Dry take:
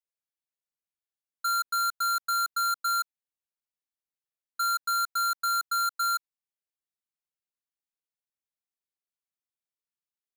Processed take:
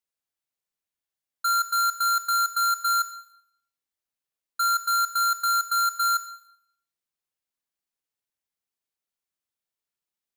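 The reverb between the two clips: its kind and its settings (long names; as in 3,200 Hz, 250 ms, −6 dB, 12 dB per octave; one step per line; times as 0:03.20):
four-comb reverb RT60 0.69 s, combs from 29 ms, DRR 10.5 dB
level +3.5 dB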